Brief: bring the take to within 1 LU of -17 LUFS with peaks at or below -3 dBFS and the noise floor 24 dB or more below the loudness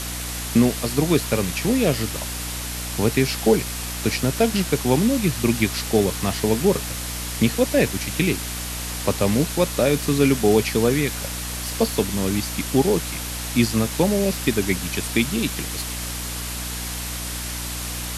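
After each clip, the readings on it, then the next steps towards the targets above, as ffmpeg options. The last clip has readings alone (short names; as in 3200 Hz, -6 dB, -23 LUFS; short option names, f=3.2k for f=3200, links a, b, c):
hum 60 Hz; harmonics up to 300 Hz; hum level -31 dBFS; noise floor -30 dBFS; noise floor target -46 dBFS; loudness -22.0 LUFS; peak -5.0 dBFS; loudness target -17.0 LUFS
-> -af "bandreject=f=60:t=h:w=4,bandreject=f=120:t=h:w=4,bandreject=f=180:t=h:w=4,bandreject=f=240:t=h:w=4,bandreject=f=300:t=h:w=4"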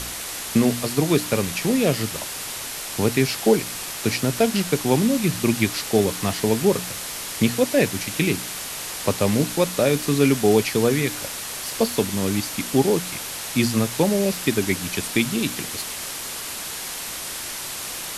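hum none; noise floor -32 dBFS; noise floor target -47 dBFS
-> -af "afftdn=nr=15:nf=-32"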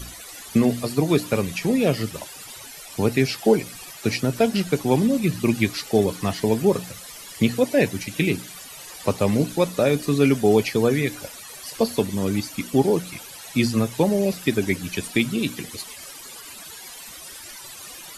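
noise floor -40 dBFS; noise floor target -47 dBFS
-> -af "afftdn=nr=7:nf=-40"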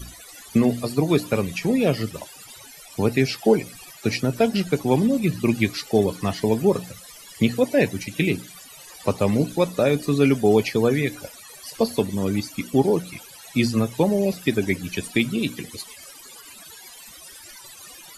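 noise floor -44 dBFS; noise floor target -47 dBFS
-> -af "afftdn=nr=6:nf=-44"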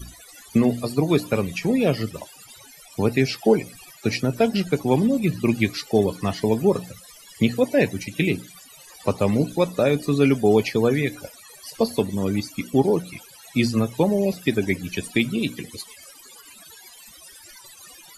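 noise floor -47 dBFS; loudness -22.5 LUFS; peak -6.5 dBFS; loudness target -17.0 LUFS
-> -af "volume=5.5dB,alimiter=limit=-3dB:level=0:latency=1"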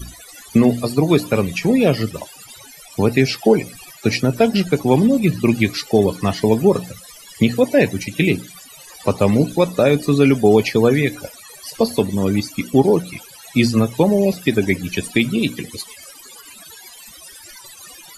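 loudness -17.5 LUFS; peak -3.0 dBFS; noise floor -42 dBFS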